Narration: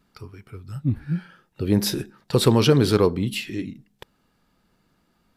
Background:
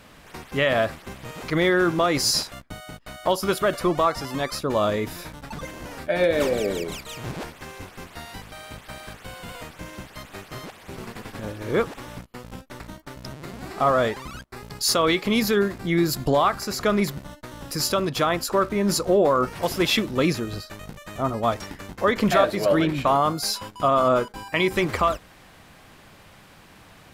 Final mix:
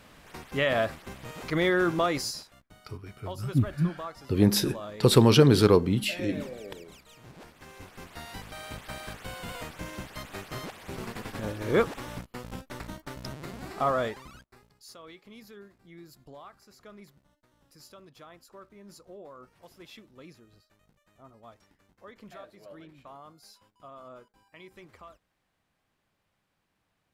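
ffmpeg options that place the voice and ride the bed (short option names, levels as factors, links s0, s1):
-filter_complex "[0:a]adelay=2700,volume=0.891[s0];[1:a]volume=3.98,afade=t=out:st=2.05:d=0.31:silence=0.223872,afade=t=in:st=7.35:d=1.33:silence=0.149624,afade=t=out:st=13.1:d=1.63:silence=0.0446684[s1];[s0][s1]amix=inputs=2:normalize=0"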